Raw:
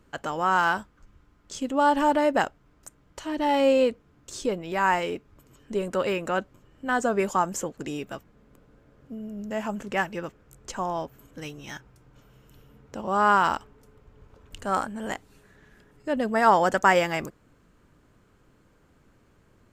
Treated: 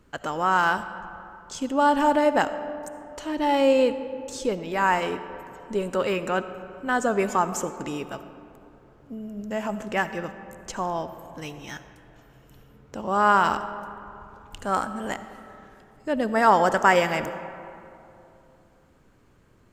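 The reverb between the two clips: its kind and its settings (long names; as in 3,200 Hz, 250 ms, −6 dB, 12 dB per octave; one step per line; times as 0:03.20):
comb and all-pass reverb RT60 2.9 s, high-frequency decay 0.45×, pre-delay 30 ms, DRR 11.5 dB
level +1 dB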